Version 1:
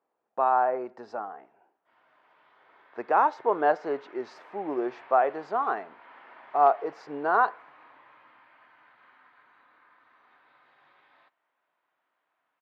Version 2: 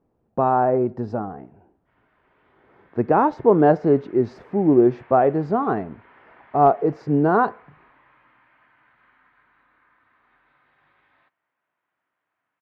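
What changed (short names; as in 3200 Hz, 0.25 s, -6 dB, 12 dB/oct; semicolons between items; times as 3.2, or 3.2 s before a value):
background: add band-pass 1900 Hz, Q 1; master: remove HPF 840 Hz 12 dB/oct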